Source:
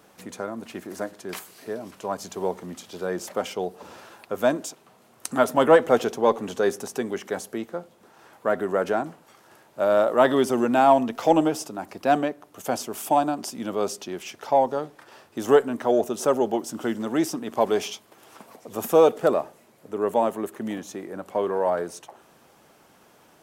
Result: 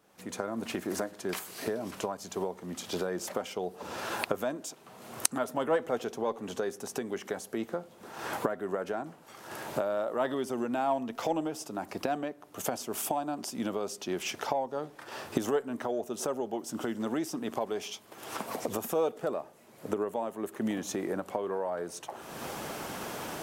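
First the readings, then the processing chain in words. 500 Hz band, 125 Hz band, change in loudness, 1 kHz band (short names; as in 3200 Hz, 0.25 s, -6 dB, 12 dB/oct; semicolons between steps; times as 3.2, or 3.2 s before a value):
-10.0 dB, -5.5 dB, -10.0 dB, -10.0 dB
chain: recorder AGC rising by 39 dB/s; gain -12.5 dB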